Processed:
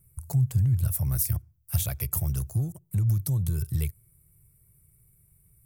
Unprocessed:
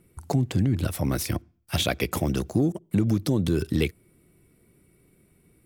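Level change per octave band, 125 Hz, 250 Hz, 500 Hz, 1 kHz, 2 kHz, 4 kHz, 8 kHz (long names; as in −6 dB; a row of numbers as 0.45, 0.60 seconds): +2.0, −11.5, −18.0, −13.5, −14.5, −13.5, +2.5 decibels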